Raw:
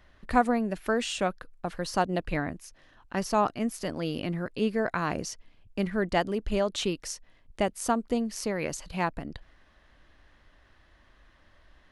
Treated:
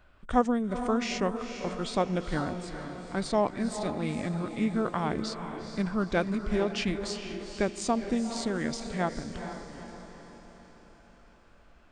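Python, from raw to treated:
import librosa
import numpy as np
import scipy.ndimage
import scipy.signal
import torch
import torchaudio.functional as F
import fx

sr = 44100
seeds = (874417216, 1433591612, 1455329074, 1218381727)

y = fx.echo_diffused(x, sr, ms=454, feedback_pct=52, wet_db=-8.5)
y = fx.formant_shift(y, sr, semitones=-4)
y = y * 10.0 ** (-1.0 / 20.0)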